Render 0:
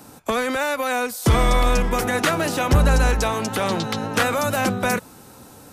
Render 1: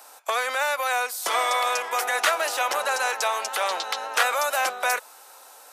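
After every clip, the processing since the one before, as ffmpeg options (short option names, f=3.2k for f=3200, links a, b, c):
-af "highpass=f=610:w=0.5412,highpass=f=610:w=1.3066"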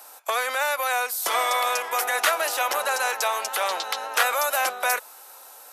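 -af "equalizer=f=12k:t=o:w=0.34:g=8.5"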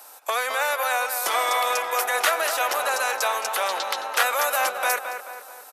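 -filter_complex "[0:a]asplit=2[a][b];[b]adelay=217,lowpass=f=2.4k:p=1,volume=-7dB,asplit=2[c][d];[d]adelay=217,lowpass=f=2.4k:p=1,volume=0.52,asplit=2[e][f];[f]adelay=217,lowpass=f=2.4k:p=1,volume=0.52,asplit=2[g][h];[h]adelay=217,lowpass=f=2.4k:p=1,volume=0.52,asplit=2[i][j];[j]adelay=217,lowpass=f=2.4k:p=1,volume=0.52,asplit=2[k][l];[l]adelay=217,lowpass=f=2.4k:p=1,volume=0.52[m];[a][c][e][g][i][k][m]amix=inputs=7:normalize=0"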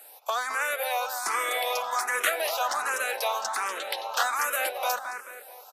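-filter_complex "[0:a]asplit=2[a][b];[b]afreqshift=1.3[c];[a][c]amix=inputs=2:normalize=1,volume=-1.5dB"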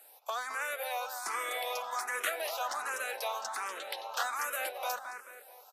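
-af "volume=-7.5dB" -ar 44100 -c:a libvorbis -b:a 128k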